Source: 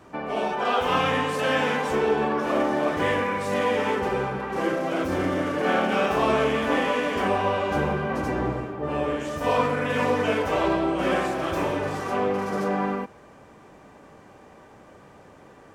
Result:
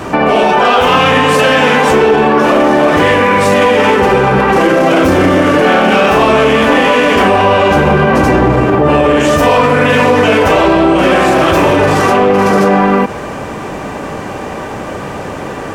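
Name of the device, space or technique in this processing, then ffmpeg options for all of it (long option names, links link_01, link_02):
mastering chain: -af "equalizer=frequency=2700:width_type=o:width=0.27:gain=3,acompressor=threshold=-27dB:ratio=2.5,asoftclip=type=tanh:threshold=-19dB,asoftclip=type=hard:threshold=-22dB,alimiter=level_in=28.5dB:limit=-1dB:release=50:level=0:latency=1,volume=-1dB"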